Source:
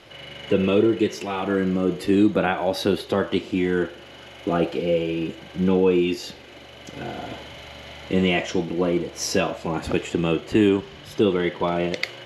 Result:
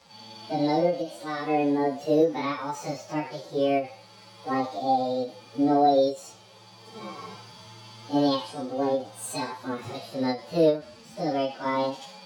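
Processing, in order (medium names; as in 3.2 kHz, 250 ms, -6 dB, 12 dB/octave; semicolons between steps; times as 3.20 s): frequency-domain pitch shifter +7.5 st; harmonic-percussive split percussive -17 dB; endings held to a fixed fall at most 190 dB/s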